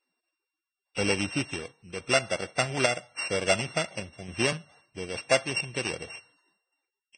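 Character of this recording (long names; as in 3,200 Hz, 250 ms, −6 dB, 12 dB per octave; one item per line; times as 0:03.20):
a buzz of ramps at a fixed pitch in blocks of 16 samples
sample-and-hold tremolo
Ogg Vorbis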